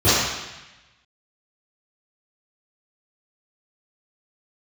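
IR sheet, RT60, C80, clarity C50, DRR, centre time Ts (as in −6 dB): 1.0 s, 0.5 dB, −3.0 dB, −16.5 dB, 103 ms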